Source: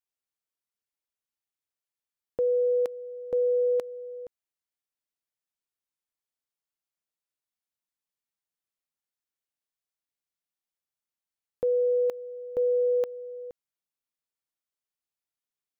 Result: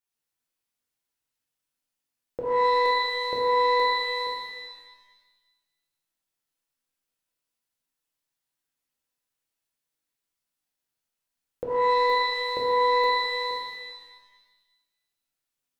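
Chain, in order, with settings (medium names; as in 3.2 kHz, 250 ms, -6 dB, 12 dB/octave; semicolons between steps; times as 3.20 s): compression, threshold -27 dBFS, peak gain reduction 4.5 dB; pitch-shifted reverb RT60 1.1 s, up +12 st, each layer -2 dB, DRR -4 dB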